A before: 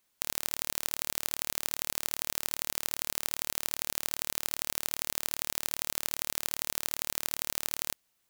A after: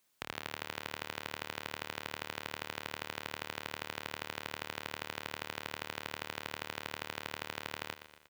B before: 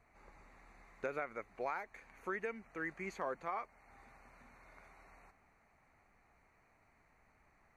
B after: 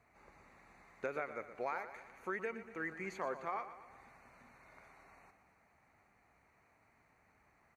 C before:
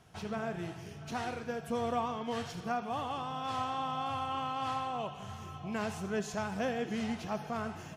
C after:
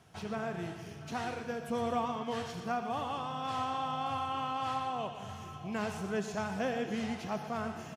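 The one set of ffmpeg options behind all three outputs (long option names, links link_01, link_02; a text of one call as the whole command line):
ffmpeg -i in.wav -filter_complex "[0:a]highpass=65,acrossover=split=3500[link_01][link_02];[link_02]acompressor=threshold=-46dB:ratio=4:attack=1:release=60[link_03];[link_01][link_03]amix=inputs=2:normalize=0,aecho=1:1:119|238|357|476|595|714:0.251|0.133|0.0706|0.0374|0.0198|0.0105" out.wav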